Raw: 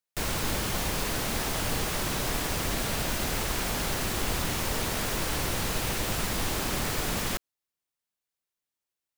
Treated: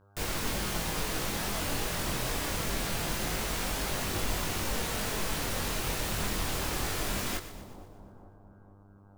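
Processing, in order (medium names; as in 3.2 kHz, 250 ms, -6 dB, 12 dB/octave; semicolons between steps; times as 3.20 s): mains buzz 100 Hz, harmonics 16, -59 dBFS -4 dB/octave; chorus voices 2, 0.24 Hz, delay 22 ms, depth 3.3 ms; two-band feedback delay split 960 Hz, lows 450 ms, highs 121 ms, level -12.5 dB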